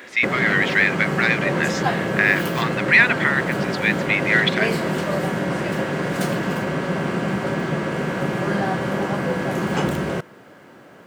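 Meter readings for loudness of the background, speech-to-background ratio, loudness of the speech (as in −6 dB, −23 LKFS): −23.5 LKFS, 4.0 dB, −19.5 LKFS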